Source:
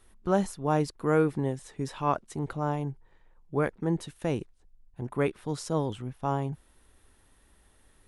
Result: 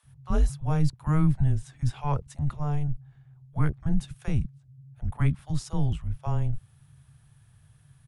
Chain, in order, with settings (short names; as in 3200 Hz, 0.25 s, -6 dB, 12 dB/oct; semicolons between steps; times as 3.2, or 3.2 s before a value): resonant low shelf 350 Hz +7 dB, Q 3; frequency shift -150 Hz; bands offset in time highs, lows 30 ms, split 540 Hz; gain -2 dB